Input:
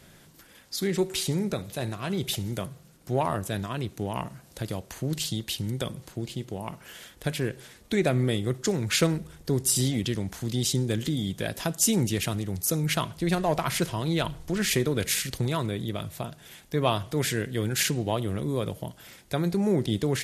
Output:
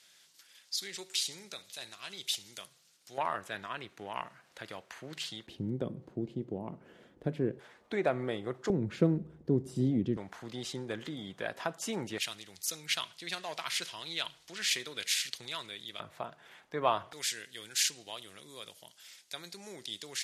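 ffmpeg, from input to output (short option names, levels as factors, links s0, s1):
-af "asetnsamples=n=441:p=0,asendcmd='3.18 bandpass f 1700;5.47 bandpass f 310;7.59 bandpass f 910;8.7 bandpass f 270;10.17 bandpass f 1100;12.18 bandpass f 3800;16 bandpass f 1100;17.13 bandpass f 5200',bandpass=f=4800:t=q:w=0.99:csg=0"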